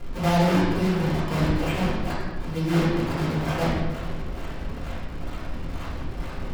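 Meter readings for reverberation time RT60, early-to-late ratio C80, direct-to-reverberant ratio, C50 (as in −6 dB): 1.3 s, 2.5 dB, −10.0 dB, 0.0 dB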